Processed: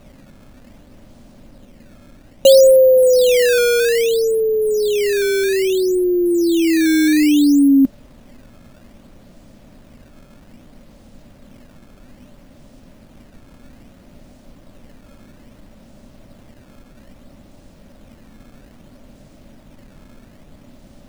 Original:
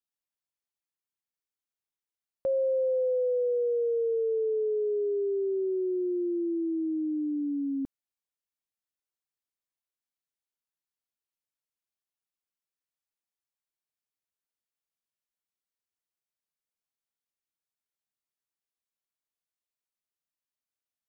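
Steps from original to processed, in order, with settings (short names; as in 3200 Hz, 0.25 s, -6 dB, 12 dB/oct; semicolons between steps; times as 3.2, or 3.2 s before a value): reverse; upward compressor, threshold -46 dBFS; reverse; added noise brown -53 dBFS; small resonant body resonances 240/570 Hz, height 15 dB, ringing for 30 ms; decimation with a swept rate 13×, swing 160% 0.61 Hz; gain +7.5 dB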